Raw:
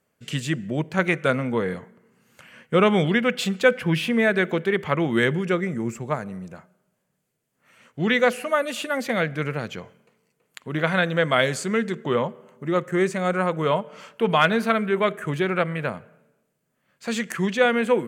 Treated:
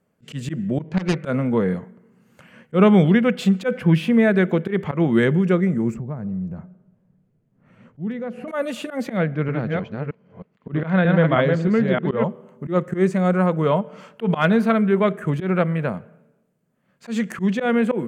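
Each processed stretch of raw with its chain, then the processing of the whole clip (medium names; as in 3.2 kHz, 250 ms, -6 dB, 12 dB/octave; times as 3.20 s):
0.81–1.24 s: self-modulated delay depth 0.63 ms + distance through air 100 m
5.94–8.48 s: RIAA curve playback + compression 3:1, threshold -35 dBFS + hard clipper -24 dBFS
9.17–12.24 s: chunks repeated in reverse 313 ms, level -3 dB + distance through air 190 m
whole clip: tilt shelf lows +5 dB, about 1.4 kHz; slow attack 100 ms; peaking EQ 190 Hz +5.5 dB 0.53 oct; trim -1 dB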